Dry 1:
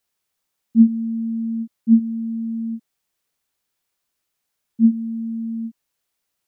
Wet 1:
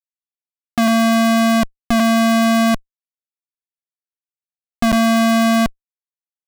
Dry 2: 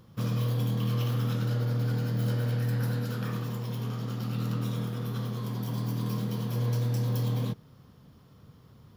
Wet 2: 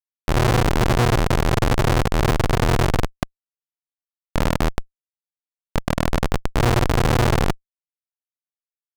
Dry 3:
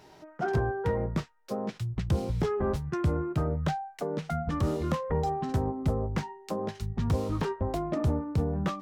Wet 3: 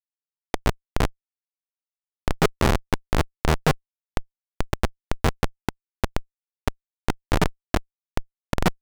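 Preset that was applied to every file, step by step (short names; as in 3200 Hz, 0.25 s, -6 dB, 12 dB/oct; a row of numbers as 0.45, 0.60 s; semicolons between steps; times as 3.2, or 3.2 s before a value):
auto swell 0.14 s; Schmitt trigger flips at -23.5 dBFS; overdrive pedal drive 12 dB, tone 7300 Hz, clips at -23.5 dBFS; normalise peaks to -6 dBFS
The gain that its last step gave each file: +16.0, +18.0, +19.5 dB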